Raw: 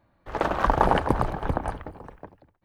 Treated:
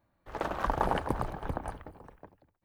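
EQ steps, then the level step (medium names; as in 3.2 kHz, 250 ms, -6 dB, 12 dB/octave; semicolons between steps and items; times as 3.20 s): treble shelf 8.9 kHz +9.5 dB; -8.5 dB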